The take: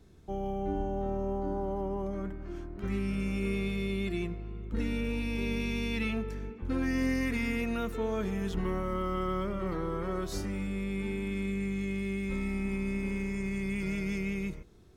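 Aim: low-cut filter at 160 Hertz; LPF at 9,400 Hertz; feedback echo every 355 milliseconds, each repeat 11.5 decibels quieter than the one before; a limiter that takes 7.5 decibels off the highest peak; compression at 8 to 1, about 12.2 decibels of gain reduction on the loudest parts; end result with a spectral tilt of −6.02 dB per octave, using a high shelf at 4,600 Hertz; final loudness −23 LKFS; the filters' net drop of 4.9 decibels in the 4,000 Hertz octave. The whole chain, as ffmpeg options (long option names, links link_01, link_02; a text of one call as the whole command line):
ffmpeg -i in.wav -af "highpass=160,lowpass=9400,equalizer=frequency=4000:width_type=o:gain=-4.5,highshelf=frequency=4600:gain=-4,acompressor=threshold=-41dB:ratio=8,alimiter=level_in=16dB:limit=-24dB:level=0:latency=1,volume=-16dB,aecho=1:1:355|710|1065:0.266|0.0718|0.0194,volume=25dB" out.wav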